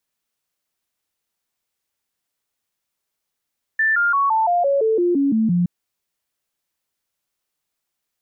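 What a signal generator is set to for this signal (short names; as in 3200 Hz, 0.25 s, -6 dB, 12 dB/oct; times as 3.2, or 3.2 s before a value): stepped sine 1770 Hz down, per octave 3, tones 11, 0.17 s, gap 0.00 s -14.5 dBFS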